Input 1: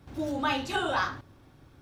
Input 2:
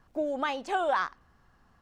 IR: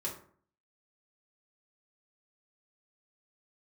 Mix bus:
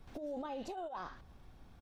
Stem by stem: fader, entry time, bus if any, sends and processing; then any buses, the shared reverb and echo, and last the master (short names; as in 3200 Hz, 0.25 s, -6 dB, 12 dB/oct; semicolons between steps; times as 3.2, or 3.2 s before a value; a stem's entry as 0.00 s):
-10.5 dB, 0.00 s, no send, tilt +3.5 dB/oct; compressor 6:1, threshold -35 dBFS, peak gain reduction 12.5 dB; LPF 2900 Hz 6 dB/oct
-1.5 dB, 1.5 ms, no send, inverse Chebyshev low-pass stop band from 2200 Hz, stop band 50 dB; low shelf 100 Hz +7.5 dB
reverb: off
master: negative-ratio compressor -35 dBFS, ratio -0.5; limiter -34.5 dBFS, peak gain reduction 10.5 dB